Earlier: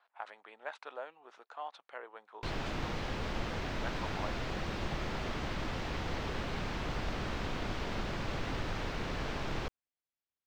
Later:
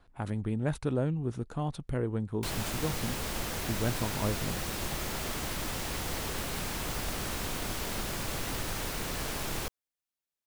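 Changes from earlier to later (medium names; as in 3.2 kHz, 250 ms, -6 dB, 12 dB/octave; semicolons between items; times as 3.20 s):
speech: remove high-pass 710 Hz 24 dB/octave; master: remove distance through air 200 m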